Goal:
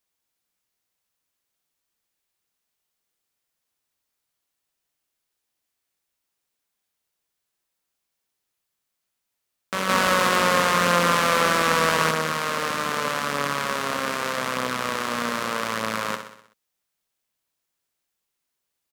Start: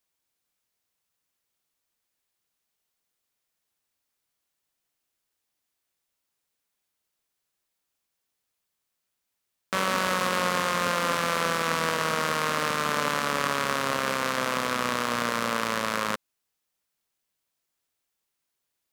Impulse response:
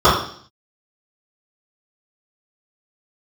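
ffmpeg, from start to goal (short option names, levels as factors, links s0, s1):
-filter_complex "[0:a]asettb=1/sr,asplit=3[s0][s1][s2];[s0]atrim=end=9.894[s3];[s1]atrim=start=9.89:end=12.11,asetpts=PTS-STARTPTS,afade=t=in:d=0.004:c=qsin,afade=t=out:st=2.216:d=0.004:c=qsin,acontrast=50[s4];[s2]atrim=start=12.106[s5];[s3][s4]acrossfade=d=0.004:c1=hsin:c2=qsin[s6];[s6][s5]acrossfade=d=0.004:c1=qsin:c2=hsin,aecho=1:1:63|126|189|252|315|378:0.355|0.195|0.107|0.059|0.0325|0.0179"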